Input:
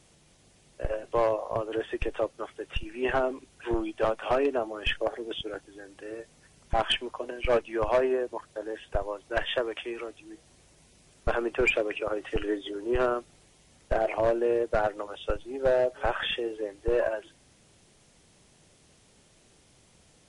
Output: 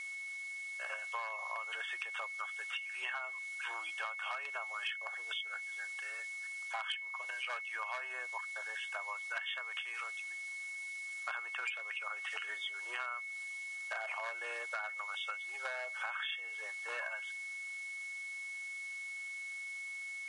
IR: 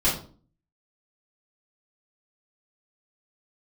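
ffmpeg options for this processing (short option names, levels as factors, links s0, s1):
-af "highpass=f=1100:w=0.5412,highpass=f=1100:w=1.3066,equalizer=f=2200:w=3.7:g=-9,acompressor=threshold=0.00562:ratio=6,aeval=exprs='val(0)+0.00447*sin(2*PI*2200*n/s)':c=same,volume=2"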